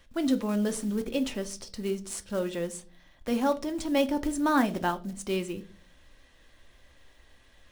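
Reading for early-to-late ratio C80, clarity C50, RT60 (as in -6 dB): 22.5 dB, 17.5 dB, 0.40 s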